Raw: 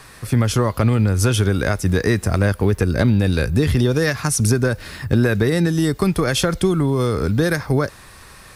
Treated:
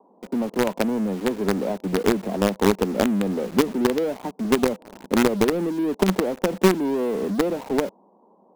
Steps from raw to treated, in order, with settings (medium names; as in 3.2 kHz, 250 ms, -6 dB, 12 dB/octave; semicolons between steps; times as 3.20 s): Chebyshev band-pass 190–960 Hz, order 5; in parallel at -5 dB: companded quantiser 2-bit; on the sum: trim -4.5 dB